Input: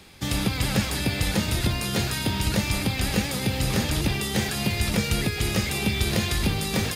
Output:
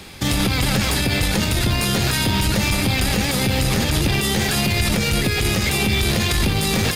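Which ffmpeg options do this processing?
ffmpeg -i in.wav -af "aeval=exprs='0.355*(cos(1*acos(clip(val(0)/0.355,-1,1)))-cos(1*PI/2))+0.0316*(cos(4*acos(clip(val(0)/0.355,-1,1)))-cos(4*PI/2))':channel_layout=same,alimiter=level_in=18.5dB:limit=-1dB:release=50:level=0:latency=1,volume=-8dB" out.wav

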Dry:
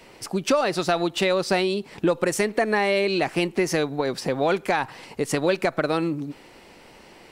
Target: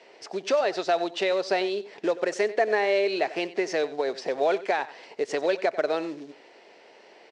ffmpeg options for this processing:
ffmpeg -i in.wav -filter_complex "[0:a]acrusher=bits=5:mode=log:mix=0:aa=0.000001,highpass=390,equalizer=frequency=420:width_type=q:width=4:gain=7,equalizer=frequency=650:width_type=q:width=4:gain=7,equalizer=frequency=1200:width_type=q:width=4:gain=-4,equalizer=frequency=1800:width_type=q:width=4:gain=3,lowpass=frequency=6200:width=0.5412,lowpass=frequency=6200:width=1.3066,asplit=2[link_01][link_02];[link_02]aecho=0:1:93:0.141[link_03];[link_01][link_03]amix=inputs=2:normalize=0,volume=-5dB" out.wav

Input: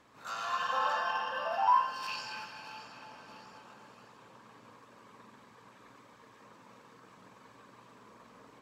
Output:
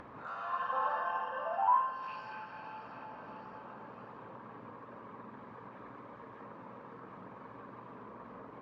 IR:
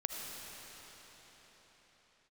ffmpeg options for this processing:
-filter_complex "[0:a]lowpass=1400[link_01];[1:a]atrim=start_sample=2205,atrim=end_sample=3528[link_02];[link_01][link_02]afir=irnorm=-1:irlink=0,acompressor=mode=upward:threshold=-39dB:ratio=2.5"

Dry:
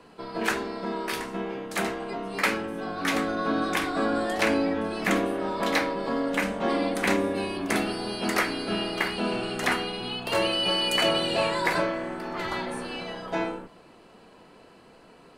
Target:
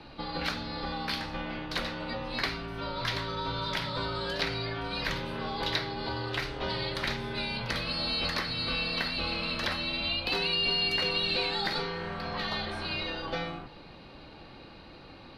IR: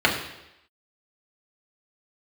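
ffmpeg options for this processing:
-filter_complex "[0:a]acrossover=split=810|4000[link_01][link_02][link_03];[link_01]acompressor=threshold=-41dB:ratio=4[link_04];[link_02]acompressor=threshold=-40dB:ratio=4[link_05];[link_03]acompressor=threshold=-39dB:ratio=4[link_06];[link_04][link_05][link_06]amix=inputs=3:normalize=0,highshelf=frequency=6000:width_type=q:width=3:gain=-11,afreqshift=-160,volume=3dB"

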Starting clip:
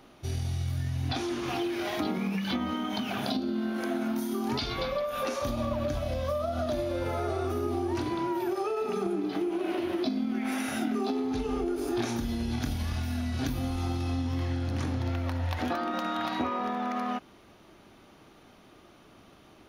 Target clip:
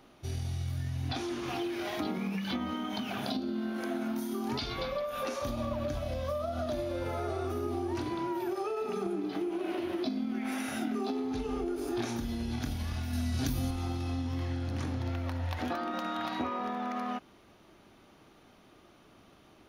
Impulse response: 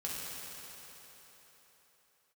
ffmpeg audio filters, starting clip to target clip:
-filter_complex "[0:a]asettb=1/sr,asplit=3[link_01][link_02][link_03];[link_01]atrim=end=13.134[link_04];[link_02]atrim=start=13.13:end=13.71,asetpts=PTS-STARTPTS,afade=type=in:duration=0.004:curve=qsin,afade=type=out:start_time=0.576:duration=0.004:curve=qsin,bass=frequency=250:gain=4,treble=frequency=4000:gain=8[link_05];[link_03]atrim=start=13.706[link_06];[link_04][link_05]acrossfade=duration=0.004:curve1=hsin:curve2=qsin[link_07];[link_07][link_06]acrossfade=duration=0.004:curve1=qsin:curve2=hsin,volume=-3.5dB"

